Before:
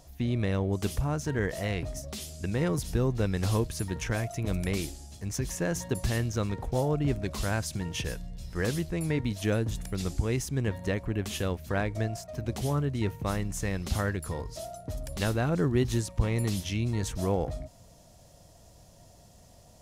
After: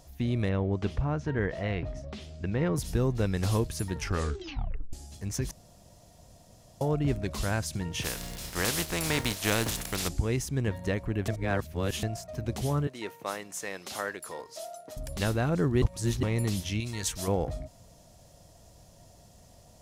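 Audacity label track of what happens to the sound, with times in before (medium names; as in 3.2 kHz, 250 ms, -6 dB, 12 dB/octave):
0.490000	2.760000	low-pass 2.9 kHz
3.960000	3.960000	tape stop 0.97 s
5.510000	6.810000	room tone
8.010000	10.070000	spectral contrast reduction exponent 0.47
11.280000	12.030000	reverse
12.870000	14.970000	high-pass 450 Hz
15.820000	16.230000	reverse
16.800000	17.280000	tilt shelf lows -7.5 dB, about 1.2 kHz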